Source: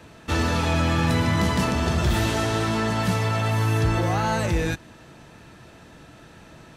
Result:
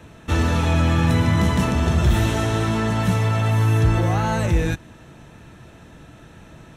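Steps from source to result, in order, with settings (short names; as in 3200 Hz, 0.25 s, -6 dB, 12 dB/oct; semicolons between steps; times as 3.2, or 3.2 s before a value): low shelf 200 Hz +6.5 dB; notch 4700 Hz, Q 5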